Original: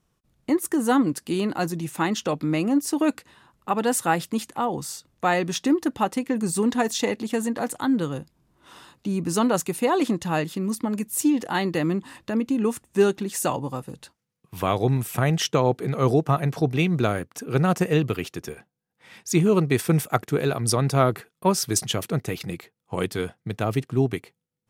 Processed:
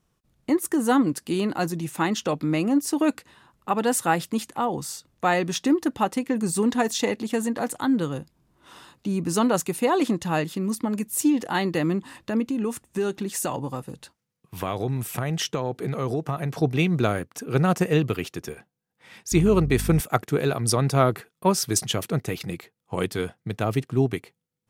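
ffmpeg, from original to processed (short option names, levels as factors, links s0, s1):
-filter_complex "[0:a]asettb=1/sr,asplit=3[s0][s1][s2];[s0]atrim=end=12.504[s3];[s1]atrim=start=12.5:end=16.6,asetpts=PTS-STARTPTS,afade=t=in:d=0.004:c=qsin,afade=t=out:st=4.096:d=0.004:c=qsin,acompressor=threshold=0.0708:ratio=3:attack=3.2:release=140:knee=1:detection=peak[s4];[s2]atrim=start=16.596[s5];[s3][s4]acrossfade=d=0.004:c1=hsin:c2=qsin[s6];[s6][s5]acrossfade=d=0.004:c1=qsin:c2=hsin,asettb=1/sr,asplit=3[s7][s8][s9];[s7]atrim=end=19.324[s10];[s8]atrim=start=19.32:end=20.01,asetpts=PTS-STARTPTS,afade=t=in:d=0.004:c=qsin,afade=t=out:st=0.686:d=0.004:c=qsin,aeval=exprs='val(0)+0.0398*(sin(2*PI*50*n/s)+sin(2*PI*2*50*n/s)/2+sin(2*PI*3*50*n/s)/3+sin(2*PI*4*50*n/s)/4+sin(2*PI*5*50*n/s)/5)':c=same[s11];[s9]atrim=start=20.006[s12];[s10][s11]acrossfade=d=0.004:c1=hsin:c2=qsin[s13];[s13][s12]acrossfade=d=0.004:c1=qsin:c2=hsin"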